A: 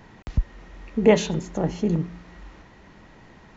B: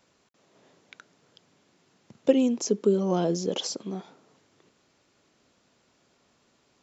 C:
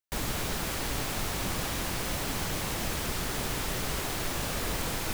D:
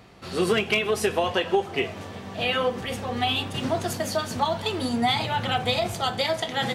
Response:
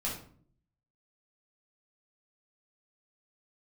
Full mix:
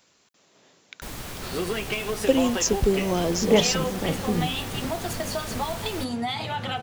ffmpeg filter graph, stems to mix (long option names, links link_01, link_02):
-filter_complex "[0:a]adelay=2450,volume=-3dB[link_01];[1:a]lowpass=frequency=3200:poles=1,crystalizer=i=6:c=0,volume=-0.5dB[link_02];[2:a]adelay=900,volume=-4.5dB[link_03];[3:a]acompressor=threshold=-28dB:ratio=3,adelay=1200,volume=0.5dB[link_04];[link_01][link_02][link_03][link_04]amix=inputs=4:normalize=0"